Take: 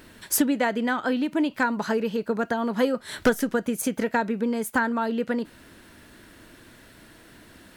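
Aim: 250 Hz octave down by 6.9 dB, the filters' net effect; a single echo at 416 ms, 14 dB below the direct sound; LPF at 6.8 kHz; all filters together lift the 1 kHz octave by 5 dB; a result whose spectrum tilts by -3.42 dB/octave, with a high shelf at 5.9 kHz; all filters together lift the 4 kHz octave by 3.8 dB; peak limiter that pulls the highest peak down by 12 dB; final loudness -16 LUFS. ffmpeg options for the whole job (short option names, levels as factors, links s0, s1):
-af "lowpass=6800,equalizer=f=250:t=o:g=-8,equalizer=f=1000:t=o:g=6.5,equalizer=f=4000:t=o:g=8,highshelf=f=5900:g=-8.5,alimiter=limit=0.119:level=0:latency=1,aecho=1:1:416:0.2,volume=4.73"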